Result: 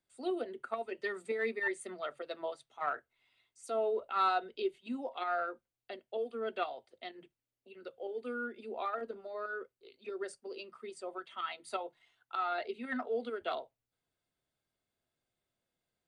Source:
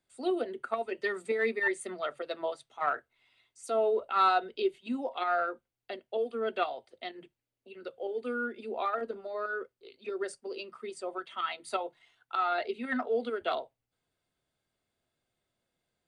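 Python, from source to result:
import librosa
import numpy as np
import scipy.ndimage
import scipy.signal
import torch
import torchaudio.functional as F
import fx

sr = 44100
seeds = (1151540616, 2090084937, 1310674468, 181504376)

y = x * librosa.db_to_amplitude(-5.0)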